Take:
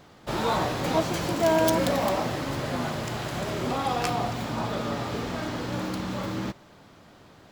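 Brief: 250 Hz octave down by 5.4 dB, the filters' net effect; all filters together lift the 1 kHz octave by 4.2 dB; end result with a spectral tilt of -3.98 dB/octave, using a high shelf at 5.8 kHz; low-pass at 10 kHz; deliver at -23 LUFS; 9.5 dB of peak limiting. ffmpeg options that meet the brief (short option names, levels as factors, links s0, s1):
-af "lowpass=10000,equalizer=f=250:t=o:g=-8,equalizer=f=1000:t=o:g=5.5,highshelf=f=5800:g=7.5,volume=1.78,alimiter=limit=0.266:level=0:latency=1"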